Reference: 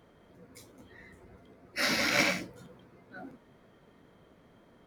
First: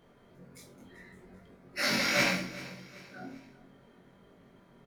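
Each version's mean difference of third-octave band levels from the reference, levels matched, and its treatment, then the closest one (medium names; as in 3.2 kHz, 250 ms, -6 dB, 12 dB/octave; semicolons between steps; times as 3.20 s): 3.5 dB: doubling 22 ms -2 dB; on a send: feedback delay 388 ms, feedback 41%, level -18 dB; on the sum: simulated room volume 1000 m³, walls furnished, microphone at 1.2 m; trim -3 dB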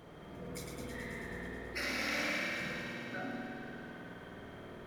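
14.0 dB: compression 6:1, threshold -45 dBFS, peak gain reduction 21.5 dB; on a send: feedback echo behind a high-pass 108 ms, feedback 77%, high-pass 1.6 kHz, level -5.5 dB; on the sum: spring tank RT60 2.9 s, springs 51 ms, chirp 65 ms, DRR -3 dB; trim +5.5 dB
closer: first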